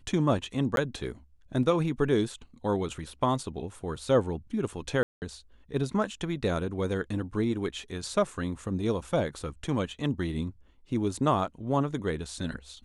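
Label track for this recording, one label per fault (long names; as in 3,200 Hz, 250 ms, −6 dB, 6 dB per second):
0.760000	0.770000	drop-out 12 ms
5.030000	5.220000	drop-out 189 ms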